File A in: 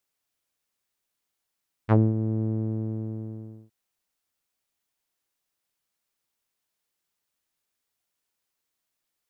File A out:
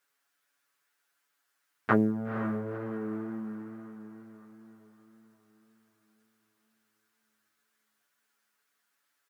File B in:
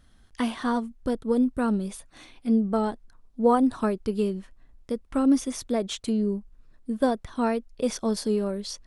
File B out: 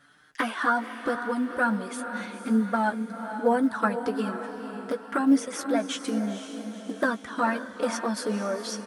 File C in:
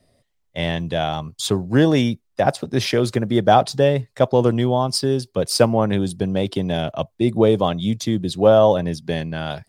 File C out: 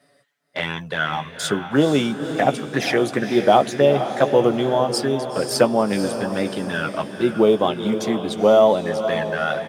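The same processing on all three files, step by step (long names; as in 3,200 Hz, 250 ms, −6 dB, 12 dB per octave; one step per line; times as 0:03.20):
in parallel at −0.5 dB: downward compressor 10 to 1, threshold −31 dBFS
on the sum: flanger swept by the level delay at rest 7.1 ms, full sweep at −13 dBFS
dynamic equaliser 4,200 Hz, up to −4 dB, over −45 dBFS, Q 2.1
high-pass filter 210 Hz 12 dB per octave
parametric band 1,500 Hz +12.5 dB 0.86 octaves
double-tracking delay 14 ms −9 dB
feedback delay with all-pass diffusion 491 ms, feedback 50%, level −9 dB
floating-point word with a short mantissa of 6 bits
tape wow and flutter 27 cents
level −1 dB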